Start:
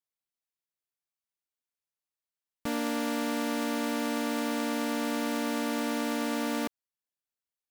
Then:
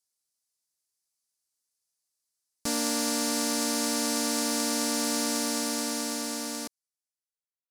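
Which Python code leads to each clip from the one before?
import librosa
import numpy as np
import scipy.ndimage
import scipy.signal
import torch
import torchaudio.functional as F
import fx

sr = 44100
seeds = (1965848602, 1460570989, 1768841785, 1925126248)

y = fx.fade_out_tail(x, sr, length_s=2.48)
y = fx.band_shelf(y, sr, hz=7100.0, db=14.5, octaves=1.7)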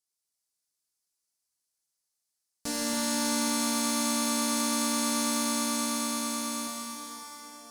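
y = fx.echo_feedback(x, sr, ms=278, feedback_pct=56, wet_db=-8.5)
y = fx.rev_plate(y, sr, seeds[0], rt60_s=4.6, hf_ratio=0.8, predelay_ms=0, drr_db=-2.0)
y = y * 10.0 ** (-4.5 / 20.0)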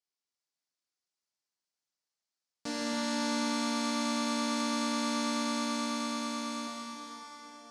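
y = fx.bandpass_edges(x, sr, low_hz=150.0, high_hz=4700.0)
y = y * 10.0 ** (-1.5 / 20.0)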